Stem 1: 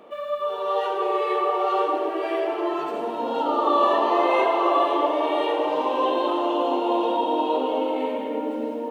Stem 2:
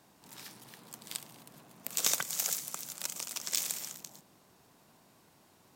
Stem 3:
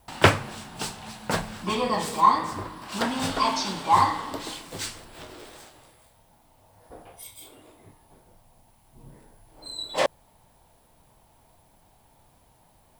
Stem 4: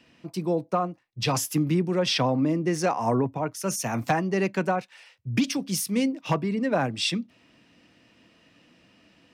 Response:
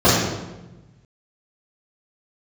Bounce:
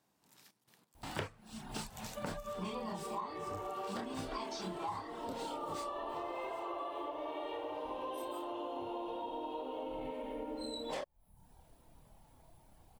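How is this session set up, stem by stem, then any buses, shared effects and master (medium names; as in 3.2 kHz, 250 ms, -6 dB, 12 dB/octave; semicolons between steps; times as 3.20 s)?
-10.0 dB, 2.05 s, no send, none
-14.0 dB, 0.00 s, no send, compression 2:1, threshold -42 dBFS, peak gain reduction 10.5 dB; trance gate "xxx.x.xxx." 89 bpm -12 dB
-2.5 dB, 0.95 s, no send, reverb removal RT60 0.59 s; bass shelf 440 Hz +6.5 dB; chorus voices 4, 0.19 Hz, delay 29 ms, depth 3.4 ms
mute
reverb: none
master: compression 8:1, threshold -38 dBFS, peak gain reduction 22.5 dB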